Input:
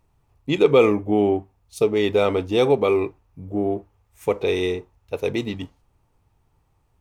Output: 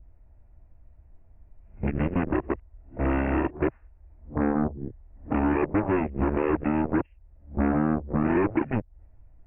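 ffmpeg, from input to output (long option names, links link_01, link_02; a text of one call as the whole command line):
ffmpeg -i in.wav -af "areverse,aemphasis=mode=reproduction:type=bsi,acompressor=threshold=-23dB:ratio=5,aeval=exprs='0.168*(cos(1*acos(clip(val(0)/0.168,-1,1)))-cos(1*PI/2))+0.0473*(cos(7*acos(clip(val(0)/0.168,-1,1)))-cos(7*PI/2))':channel_layout=same,aresample=8000,aresample=44100,asetrate=32667,aresample=44100,adynamicequalizer=threshold=0.00794:dfrequency=1500:dqfactor=0.7:tfrequency=1500:tqfactor=0.7:attack=5:release=100:ratio=0.375:range=3:mode=cutabove:tftype=highshelf" out.wav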